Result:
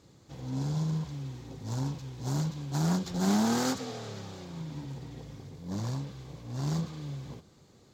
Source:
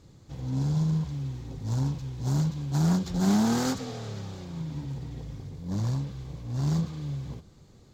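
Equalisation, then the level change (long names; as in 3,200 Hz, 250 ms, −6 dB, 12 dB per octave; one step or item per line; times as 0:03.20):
high-pass filter 130 Hz 6 dB per octave
bass and treble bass −3 dB, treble 0 dB
0.0 dB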